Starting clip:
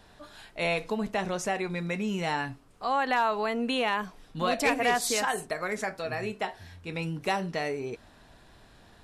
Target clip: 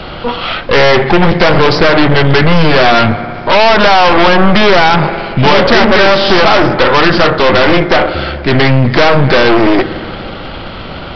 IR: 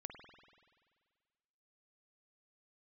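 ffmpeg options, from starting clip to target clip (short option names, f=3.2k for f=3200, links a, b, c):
-filter_complex "[0:a]asplit=2[a][b];[1:a]atrim=start_sample=2205[c];[b][c]afir=irnorm=-1:irlink=0,volume=-6.5dB[d];[a][d]amix=inputs=2:normalize=0,acrossover=split=130|2200[e][f][g];[e]acompressor=threshold=-58dB:ratio=4[h];[f]acompressor=threshold=-25dB:ratio=4[i];[g]acompressor=threshold=-44dB:ratio=4[j];[h][i][j]amix=inputs=3:normalize=0,aeval=exprs='0.178*(cos(1*acos(clip(val(0)/0.178,-1,1)))-cos(1*PI/2))+0.0355*(cos(8*acos(clip(val(0)/0.178,-1,1)))-cos(8*PI/2))':c=same,asetrate=35721,aresample=44100,aresample=11025,asoftclip=type=tanh:threshold=-26dB,aresample=44100,apsyclip=32dB,volume=-1.5dB"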